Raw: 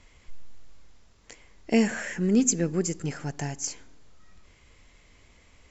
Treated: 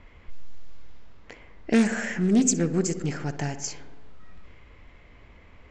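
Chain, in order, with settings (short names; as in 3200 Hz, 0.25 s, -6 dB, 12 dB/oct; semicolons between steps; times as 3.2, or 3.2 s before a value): darkening echo 61 ms, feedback 72%, low-pass 2700 Hz, level -13.5 dB; in parallel at +0.5 dB: compressor, threshold -38 dBFS, peak gain reduction 20 dB; on the sum: low-pass opened by the level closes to 2000 Hz, open at -20 dBFS; Doppler distortion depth 0.26 ms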